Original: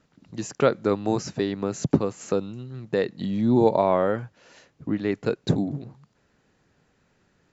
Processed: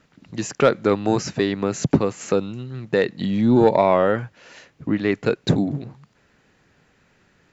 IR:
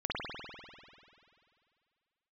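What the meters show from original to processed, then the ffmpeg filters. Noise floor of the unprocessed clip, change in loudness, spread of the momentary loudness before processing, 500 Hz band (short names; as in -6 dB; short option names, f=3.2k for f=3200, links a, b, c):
-67 dBFS, +4.0 dB, 16 LU, +4.0 dB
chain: -af "equalizer=f=2.2k:t=o:w=1.4:g=5,acontrast=69,volume=-2dB"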